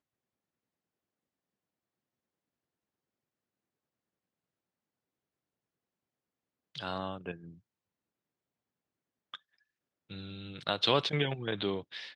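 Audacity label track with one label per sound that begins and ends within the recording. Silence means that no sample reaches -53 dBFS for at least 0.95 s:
6.750000	7.580000	sound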